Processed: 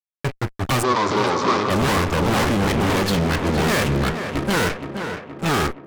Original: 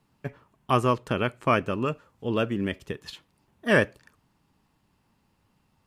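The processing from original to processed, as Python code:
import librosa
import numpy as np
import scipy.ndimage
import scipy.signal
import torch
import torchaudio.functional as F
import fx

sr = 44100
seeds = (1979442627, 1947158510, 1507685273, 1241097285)

p1 = fx.cheby_harmonics(x, sr, harmonics=(2, 3, 4, 8), levels_db=(-8, -25, -12, -18), full_scale_db=-7.0)
p2 = fx.echo_pitch(p1, sr, ms=124, semitones=-3, count=2, db_per_echo=-3.0)
p3 = fx.fuzz(p2, sr, gain_db=43.0, gate_db=-46.0)
p4 = fx.cabinet(p3, sr, low_hz=240.0, low_slope=12, high_hz=5600.0, hz=(390.0, 690.0, 1100.0, 1700.0, 2800.0), db=(7, -4, 8, -4, -6), at=(0.82, 1.69), fade=0.02)
p5 = p4 + fx.echo_tape(p4, sr, ms=470, feedback_pct=65, wet_db=-6.5, lp_hz=2800.0, drive_db=4.0, wow_cents=7, dry=0)
y = p5 * librosa.db_to_amplitude(-5.0)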